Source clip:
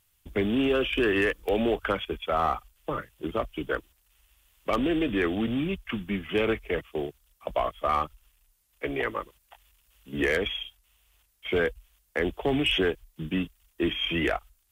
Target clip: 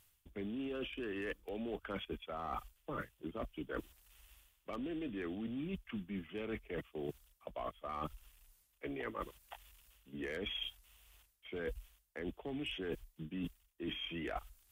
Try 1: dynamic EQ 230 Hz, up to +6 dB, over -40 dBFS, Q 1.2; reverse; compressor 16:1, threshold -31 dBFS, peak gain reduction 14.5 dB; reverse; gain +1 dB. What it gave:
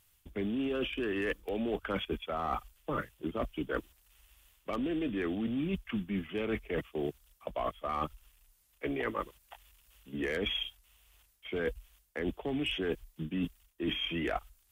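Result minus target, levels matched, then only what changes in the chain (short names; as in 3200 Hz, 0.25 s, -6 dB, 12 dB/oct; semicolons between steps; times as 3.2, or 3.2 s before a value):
compressor: peak gain reduction -8 dB
change: compressor 16:1, threshold -39.5 dBFS, peak gain reduction 22.5 dB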